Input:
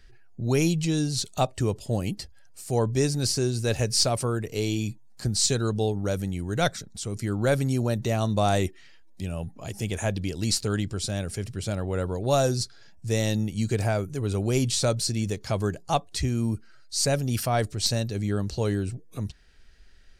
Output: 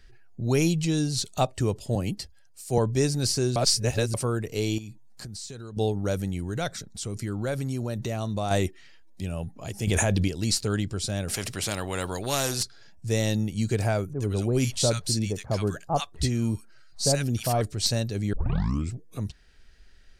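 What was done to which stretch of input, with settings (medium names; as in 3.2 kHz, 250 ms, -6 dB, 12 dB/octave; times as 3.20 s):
1.95–2.78 s: three bands expanded up and down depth 40%
3.56–4.14 s: reverse
4.78–5.77 s: compression 8:1, threshold -36 dBFS
6.39–8.51 s: compression 2.5:1, threshold -27 dBFS
9.87–10.28 s: level flattener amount 100%
11.28–12.63 s: spectrum-flattening compressor 2:1
14.13–17.61 s: bands offset in time lows, highs 70 ms, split 1.2 kHz
18.33 s: tape start 0.60 s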